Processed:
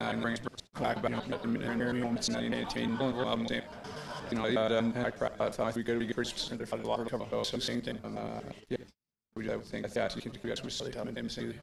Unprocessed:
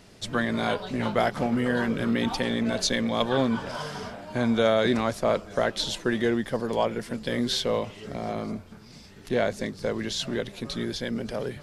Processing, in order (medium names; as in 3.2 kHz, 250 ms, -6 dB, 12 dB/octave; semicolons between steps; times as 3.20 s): slices played last to first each 120 ms, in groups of 6; delay 73 ms -16.5 dB; gate -40 dBFS, range -42 dB; trim -7 dB